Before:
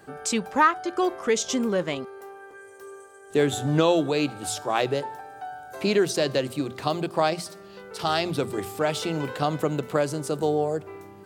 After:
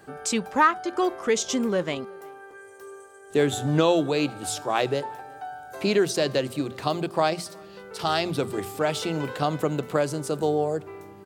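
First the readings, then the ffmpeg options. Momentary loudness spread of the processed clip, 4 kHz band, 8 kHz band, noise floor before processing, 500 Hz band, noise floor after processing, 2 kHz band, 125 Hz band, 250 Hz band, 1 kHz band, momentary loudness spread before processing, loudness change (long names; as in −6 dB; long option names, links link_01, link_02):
19 LU, 0.0 dB, 0.0 dB, −47 dBFS, 0.0 dB, −47 dBFS, 0.0 dB, 0.0 dB, 0.0 dB, 0.0 dB, 19 LU, 0.0 dB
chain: -filter_complex "[0:a]asplit=2[link_01][link_02];[link_02]adelay=361.5,volume=-28dB,highshelf=frequency=4000:gain=-8.13[link_03];[link_01][link_03]amix=inputs=2:normalize=0"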